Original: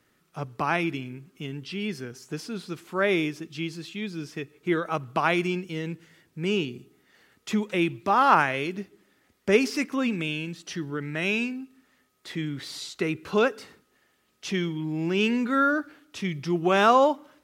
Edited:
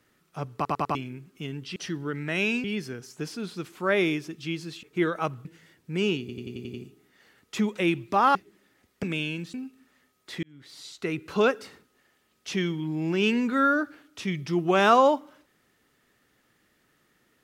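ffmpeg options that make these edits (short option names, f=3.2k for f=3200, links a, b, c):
-filter_complex "[0:a]asplit=19[a][b][c][d][e][f][g][h][i][j][k][l][m][n][o][p][q][r][s];[a]atrim=end=0.652[t];[b]atrim=start=0.548:end=0.652[u];[c]atrim=start=0.548:end=0.652[v];[d]atrim=start=0.548:end=0.652[w];[e]atrim=start=0.948:end=1.762[x];[f]atrim=start=10.628:end=11.512[y];[g]atrim=start=1.758:end=3.952[z];[h]atrim=start=4.528:end=5.152[aa];[i]atrim=start=5.928:end=6.772[ab];[j]atrim=start=6.678:end=6.772[ac];[k]atrim=start=6.678:end=6.772[ad];[l]atrim=start=6.678:end=6.772[ae];[m]atrim=start=6.678:end=6.772[af];[n]atrim=start=6.678:end=6.772[ag];[o]atrim=start=6.678:end=8.292[ah];[p]atrim=start=8.808:end=9.492[ai];[q]atrim=start=10.118:end=10.632[aj];[r]atrim=start=11.508:end=12.4,asetpts=PTS-STARTPTS,afade=t=out:st=0.888:d=0.004:c=hsin[ak];[s]atrim=start=12.4,asetpts=PTS-STARTPTS,afade=t=in:d=0.9[al];[t][u]acrossfade=d=0.004:c1=hsin:c2=hsin[am];[am][v]acrossfade=d=0.004:c1=hsin:c2=hsin[an];[an][w]acrossfade=d=0.004:c1=hsin:c2=hsin[ao];[ao][x]acrossfade=d=0.004:c1=hsin:c2=hsin[ap];[ap][y]acrossfade=d=0.004:c1=hsin:c2=hsin[aq];[aq][z]acrossfade=d=0.004:c1=hsin:c2=hsin[ar];[ar][aa]acrossfade=d=0.004:c1=hsin:c2=hsin[as];[as][ab]acrossfade=d=0.004:c1=hsin:c2=hsin[at];[at][ac]acrossfade=d=0.004:c1=hsin:c2=hsin[au];[au][ad]acrossfade=d=0.004:c1=hsin:c2=hsin[av];[av][ae]acrossfade=d=0.004:c1=hsin:c2=hsin[aw];[aw][af]acrossfade=d=0.004:c1=hsin:c2=hsin[ax];[ax][ag]acrossfade=d=0.004:c1=hsin:c2=hsin[ay];[ay][ah]acrossfade=d=0.004:c1=hsin:c2=hsin[az];[az][ai]acrossfade=d=0.004:c1=hsin:c2=hsin[ba];[ba][aj]acrossfade=d=0.004:c1=hsin:c2=hsin[bb];[ak][al]concat=n=2:v=0:a=1[bc];[bb][bc]acrossfade=d=0.004:c1=hsin:c2=hsin"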